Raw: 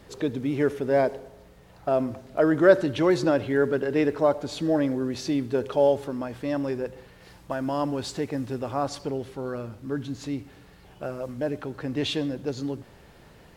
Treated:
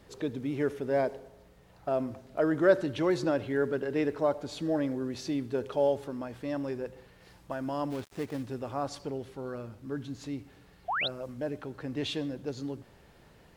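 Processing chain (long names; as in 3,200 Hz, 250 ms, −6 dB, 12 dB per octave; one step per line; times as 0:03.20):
0:07.90–0:08.43: gap after every zero crossing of 0.18 ms
0:10.88–0:11.08: sound drawn into the spectrogram rise 630–4,300 Hz −24 dBFS
level −6 dB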